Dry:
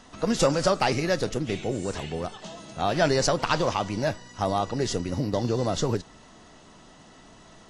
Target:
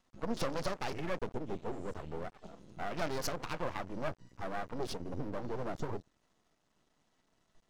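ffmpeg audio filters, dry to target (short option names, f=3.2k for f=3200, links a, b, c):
-af "afwtdn=0.0178,alimiter=limit=-17.5dB:level=0:latency=1:release=208,aeval=exprs='max(val(0),0)':c=same,volume=-4dB"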